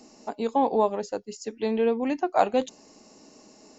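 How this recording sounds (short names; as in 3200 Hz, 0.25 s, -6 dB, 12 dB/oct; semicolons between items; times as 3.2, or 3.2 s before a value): noise floor -55 dBFS; spectral tilt -1.5 dB/oct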